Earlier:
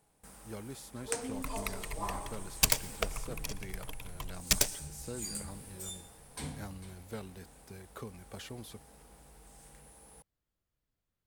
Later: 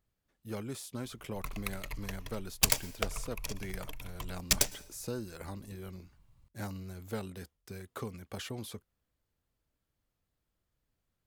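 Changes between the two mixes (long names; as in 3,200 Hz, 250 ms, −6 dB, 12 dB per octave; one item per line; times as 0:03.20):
speech +4.5 dB
first sound: muted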